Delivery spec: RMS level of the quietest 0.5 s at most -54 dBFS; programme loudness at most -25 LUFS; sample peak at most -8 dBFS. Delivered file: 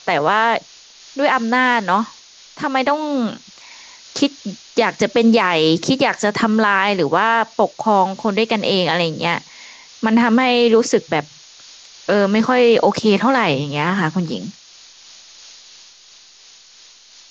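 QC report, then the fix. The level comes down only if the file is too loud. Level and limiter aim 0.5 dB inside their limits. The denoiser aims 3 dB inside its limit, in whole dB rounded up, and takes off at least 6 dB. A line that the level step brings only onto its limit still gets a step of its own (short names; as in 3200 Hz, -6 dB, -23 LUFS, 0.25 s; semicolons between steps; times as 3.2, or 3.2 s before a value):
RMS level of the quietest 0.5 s -46 dBFS: fail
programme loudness -16.5 LUFS: fail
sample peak -3.0 dBFS: fail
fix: gain -9 dB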